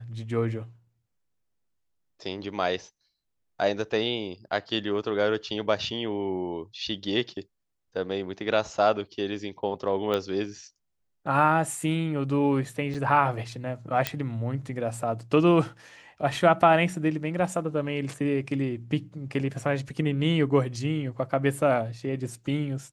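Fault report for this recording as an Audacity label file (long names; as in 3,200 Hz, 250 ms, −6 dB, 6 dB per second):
10.140000	10.140000	click −15 dBFS
12.940000	12.950000	drop-out 5.5 ms
14.070000	14.070000	click −8 dBFS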